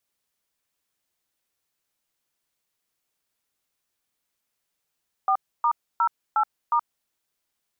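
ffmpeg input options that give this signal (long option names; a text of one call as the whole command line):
ffmpeg -f lavfi -i "aevalsrc='0.0944*clip(min(mod(t,0.36),0.075-mod(t,0.36))/0.002,0,1)*(eq(floor(t/0.36),0)*(sin(2*PI*770*mod(t,0.36))+sin(2*PI*1209*mod(t,0.36)))+eq(floor(t/0.36),1)*(sin(2*PI*941*mod(t,0.36))+sin(2*PI*1209*mod(t,0.36)))+eq(floor(t/0.36),2)*(sin(2*PI*941*mod(t,0.36))+sin(2*PI*1336*mod(t,0.36)))+eq(floor(t/0.36),3)*(sin(2*PI*852*mod(t,0.36))+sin(2*PI*1336*mod(t,0.36)))+eq(floor(t/0.36),4)*(sin(2*PI*941*mod(t,0.36))+sin(2*PI*1209*mod(t,0.36))))':duration=1.8:sample_rate=44100" out.wav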